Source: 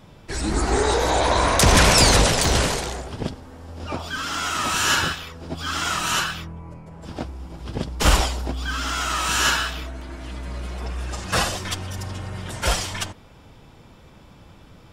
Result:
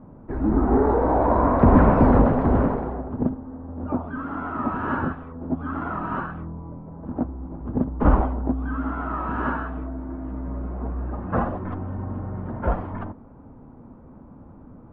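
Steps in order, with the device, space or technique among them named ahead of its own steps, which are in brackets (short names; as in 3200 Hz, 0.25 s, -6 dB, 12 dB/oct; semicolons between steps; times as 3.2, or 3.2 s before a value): under water (LPF 1200 Hz 24 dB/oct; bell 250 Hz +11 dB 0.51 oct)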